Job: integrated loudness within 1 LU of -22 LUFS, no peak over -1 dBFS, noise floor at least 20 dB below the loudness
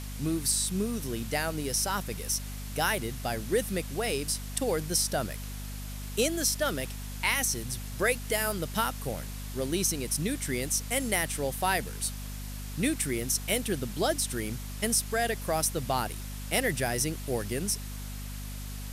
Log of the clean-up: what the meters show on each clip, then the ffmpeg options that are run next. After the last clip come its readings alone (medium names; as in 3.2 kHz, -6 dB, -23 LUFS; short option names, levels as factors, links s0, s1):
hum 50 Hz; highest harmonic 250 Hz; hum level -36 dBFS; noise floor -38 dBFS; noise floor target -50 dBFS; loudness -30.0 LUFS; peak level -11.0 dBFS; loudness target -22.0 LUFS
-> -af "bandreject=f=50:t=h:w=4,bandreject=f=100:t=h:w=4,bandreject=f=150:t=h:w=4,bandreject=f=200:t=h:w=4,bandreject=f=250:t=h:w=4"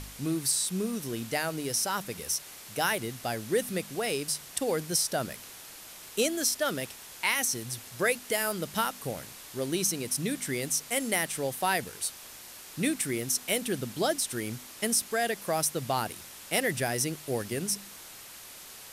hum not found; noise floor -47 dBFS; noise floor target -50 dBFS
-> -af "afftdn=nr=6:nf=-47"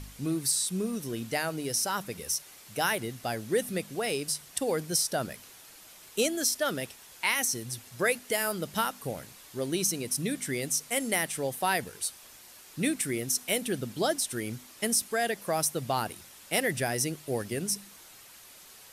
noise floor -52 dBFS; loudness -30.0 LUFS; peak level -11.0 dBFS; loudness target -22.0 LUFS
-> -af "volume=2.51"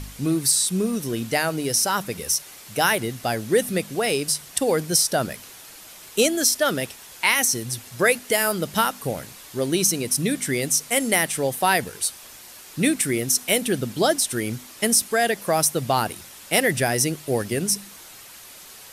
loudness -22.0 LUFS; peak level -3.0 dBFS; noise floor -44 dBFS